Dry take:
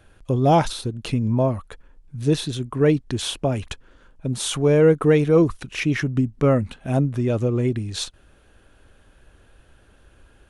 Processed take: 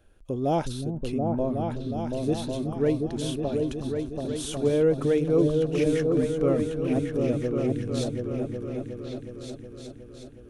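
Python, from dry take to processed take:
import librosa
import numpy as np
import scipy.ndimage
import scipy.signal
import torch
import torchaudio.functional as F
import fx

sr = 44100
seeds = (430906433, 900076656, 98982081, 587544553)

p1 = fx.graphic_eq(x, sr, hz=(125, 1000, 2000, 4000, 8000), db=(-9, -7, -6, -4, -4))
p2 = p1 + fx.echo_opening(p1, sr, ms=366, hz=200, octaves=2, feedback_pct=70, wet_db=0, dry=0)
y = p2 * 10.0 ** (-4.5 / 20.0)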